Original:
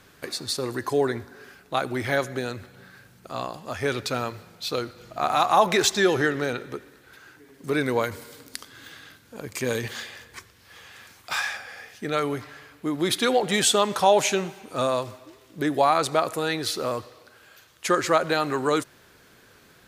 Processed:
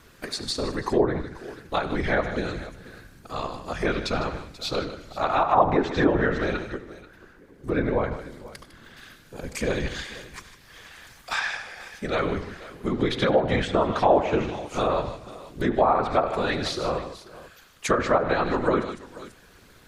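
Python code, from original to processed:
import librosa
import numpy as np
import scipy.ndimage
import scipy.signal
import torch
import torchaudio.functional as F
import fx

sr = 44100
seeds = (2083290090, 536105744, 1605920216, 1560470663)

y = fx.high_shelf(x, sr, hz=2100.0, db=-11.5, at=(6.7, 8.97))
y = fx.whisperise(y, sr, seeds[0])
y = fx.low_shelf(y, sr, hz=73.0, db=10.5)
y = fx.echo_multitap(y, sr, ms=(74, 98, 153, 486), db=(-16.5, -17.5, -12.5, -18.5))
y = fx.env_lowpass_down(y, sr, base_hz=1200.0, full_db=-15.5)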